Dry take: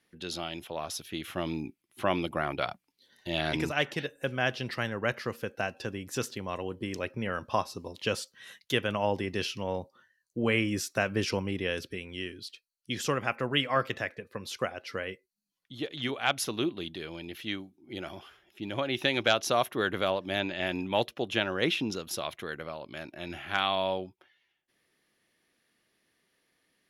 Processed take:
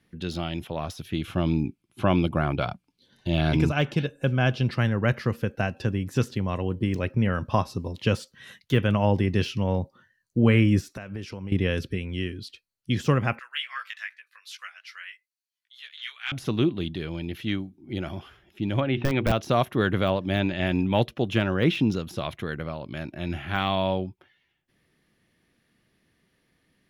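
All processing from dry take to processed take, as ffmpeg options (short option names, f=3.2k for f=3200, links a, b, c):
-filter_complex "[0:a]asettb=1/sr,asplit=3[a][b][c];[a]atrim=end=1.164[d];[b]atrim=start=1.16:end=4.8,asetpts=PTS-STARTPTS,afade=t=in:d=0.004:c=qsin,afade=t=out:st=3.636:d=0.004:c=qsin,lowpass=11k,bandreject=f=1.9k:w=6.2[e];[c]atrim=start=4.796[f];[d][e]acrossfade=d=0.004:c1=hsin:c2=qsin[g];[g][f]acrossfade=d=0.004:c1=qsin:c2=hsin,asettb=1/sr,asplit=3[h][i][j];[h]atrim=end=10.924[k];[i]atrim=start=10.92:end=11.52,asetpts=PTS-STARTPTS,afade=t=in:d=0.004:c=qsin,afade=t=out:st=0.596:d=0.004:c=qsin,equalizer=f=91:w=0.44:g=-4.5,acompressor=threshold=-44dB:ratio=3:attack=3.2:release=140:knee=1:detection=peak[l];[j]atrim=start=11.516[m];[k][l]acrossfade=d=0.004:c1=hsin:c2=qsin[n];[n][m]acrossfade=d=0.004:c1=qsin:c2=hsin,asettb=1/sr,asplit=3[o][p][q];[o]atrim=end=13.394[r];[p]atrim=start=13.39:end=16.32,asetpts=PTS-STARTPTS,afade=t=in:d=0.004:c=qsin,afade=t=out:st=2.926:d=0.004:c=qsin,highpass=f=1.5k:w=0.5412,highpass=f=1.5k:w=1.3066,flanger=delay=15.5:depth=3.7:speed=2.5[s];[q]atrim=start=16.316[t];[r][s]acrossfade=d=0.004:c1=hsin:c2=qsin[u];[u][t]acrossfade=d=0.004:c1=qsin:c2=hsin,asettb=1/sr,asplit=3[v][w][x];[v]atrim=end=18.804[y];[w]atrim=start=18.8:end=19.32,asetpts=PTS-STARTPTS,afade=t=in:d=0.004:c=qsin,afade=t=out:st=0.516:d=0.004:c=qsin,lowpass=f=3.1k:w=0.5412,lowpass=f=3.1k:w=1.3066,bandreject=f=60:t=h:w=6,bandreject=f=120:t=h:w=6,bandreject=f=180:t=h:w=6,bandreject=f=240:t=h:w=6,bandreject=f=300:t=h:w=6,bandreject=f=360:t=h:w=6,bandreject=f=420:t=h:w=6,bandreject=f=480:t=h:w=6,aeval=exprs='(mod(7.08*val(0)+1,2)-1)/7.08':c=same[z];[x]atrim=start=19.316[aa];[y][z]acrossfade=d=0.004:c1=hsin:c2=qsin[ab];[ab][aa]acrossfade=d=0.004:c1=qsin:c2=hsin,deesser=0.85,bass=f=250:g=13,treble=f=4k:g=-4,volume=3dB"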